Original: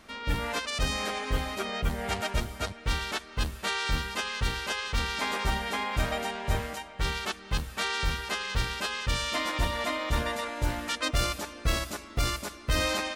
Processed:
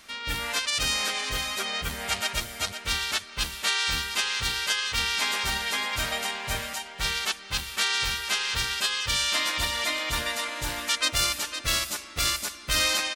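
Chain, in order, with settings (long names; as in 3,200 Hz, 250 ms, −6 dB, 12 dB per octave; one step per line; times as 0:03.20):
tilt shelving filter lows −8 dB, about 1,400 Hz
on a send: single-tap delay 508 ms −9.5 dB
on the sum: level +1.5 dB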